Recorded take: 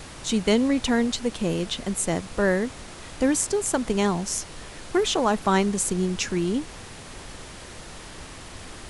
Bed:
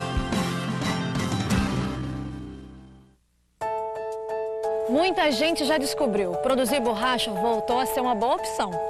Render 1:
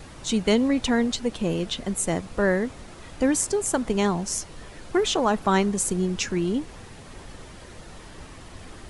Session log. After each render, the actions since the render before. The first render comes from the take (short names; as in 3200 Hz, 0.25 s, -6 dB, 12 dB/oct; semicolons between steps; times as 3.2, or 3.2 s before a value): denoiser 7 dB, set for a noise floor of -42 dBFS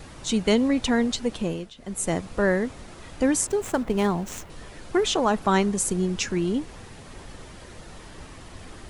1.39–2.09 dip -19.5 dB, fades 0.35 s linear; 3.47–4.5 median filter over 9 samples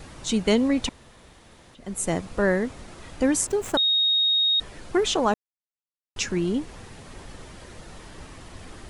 0.89–1.75 room tone; 3.77–4.6 bleep 3740 Hz -18 dBFS; 5.34–6.16 mute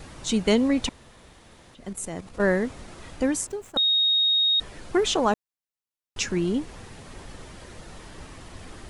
1.89–2.41 level quantiser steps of 11 dB; 3.09–3.76 fade out, to -19.5 dB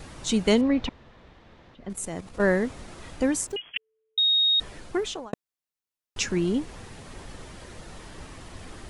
0.61–1.9 air absorption 220 m; 3.56–4.18 inverted band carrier 3300 Hz; 4.71–5.33 fade out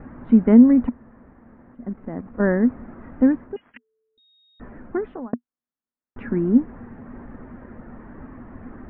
steep low-pass 1800 Hz 36 dB/oct; bell 240 Hz +15 dB 0.43 oct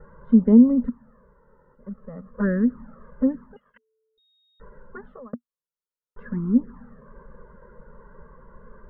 envelope flanger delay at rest 2.2 ms, full sweep at -11 dBFS; fixed phaser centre 480 Hz, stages 8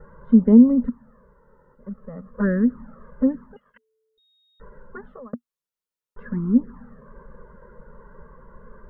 gain +1.5 dB